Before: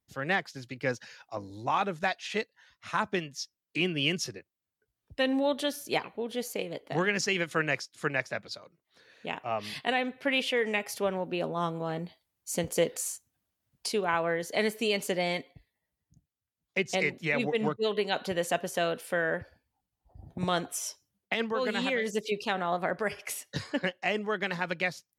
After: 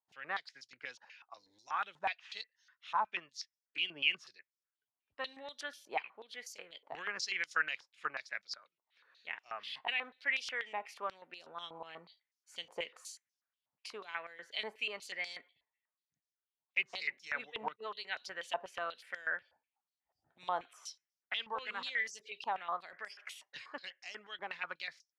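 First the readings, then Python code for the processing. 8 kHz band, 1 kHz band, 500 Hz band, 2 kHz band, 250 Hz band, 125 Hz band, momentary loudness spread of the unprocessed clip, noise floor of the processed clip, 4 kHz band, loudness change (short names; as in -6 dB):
-14.0 dB, -7.0 dB, -17.5 dB, -6.0 dB, -26.0 dB, under -25 dB, 10 LU, under -85 dBFS, -6.5 dB, -9.0 dB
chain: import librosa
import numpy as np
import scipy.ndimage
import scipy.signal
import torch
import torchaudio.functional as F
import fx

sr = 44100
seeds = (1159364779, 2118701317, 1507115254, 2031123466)

y = fx.filter_held_bandpass(x, sr, hz=8.2, low_hz=910.0, high_hz=5400.0)
y = y * librosa.db_to_amplitude(1.5)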